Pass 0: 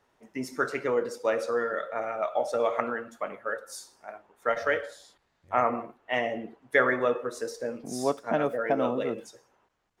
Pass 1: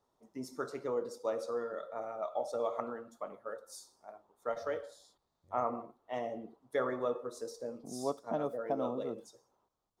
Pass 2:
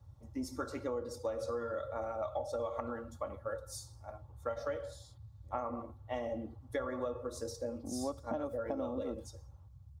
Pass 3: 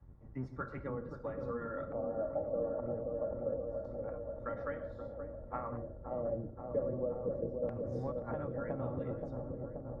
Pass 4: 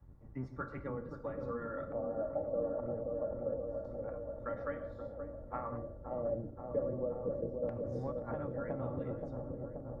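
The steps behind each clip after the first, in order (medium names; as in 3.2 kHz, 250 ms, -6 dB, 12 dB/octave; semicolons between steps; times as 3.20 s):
high-order bell 2.1 kHz -12 dB 1.2 oct; trim -8 dB
comb 3.6 ms, depth 61%; compression 12:1, threshold -35 dBFS, peak gain reduction 11.5 dB; band noise 56–120 Hz -55 dBFS; trim +2 dB
octave divider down 1 oct, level +3 dB; LFO low-pass square 0.26 Hz 560–1800 Hz; feedback echo behind a low-pass 528 ms, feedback 72%, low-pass 800 Hz, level -4.5 dB; trim -5.5 dB
feedback comb 290 Hz, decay 0.62 s, mix 60%; trim +7 dB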